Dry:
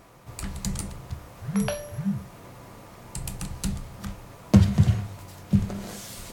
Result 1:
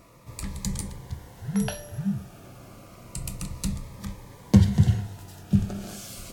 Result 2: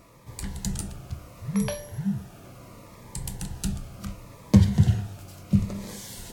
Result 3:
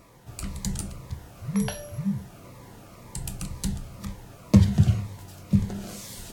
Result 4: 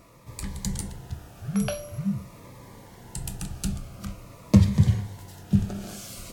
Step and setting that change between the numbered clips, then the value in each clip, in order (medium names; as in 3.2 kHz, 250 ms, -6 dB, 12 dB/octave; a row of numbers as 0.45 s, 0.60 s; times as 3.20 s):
Shepard-style phaser, rate: 0.29 Hz, 0.71 Hz, 2 Hz, 0.46 Hz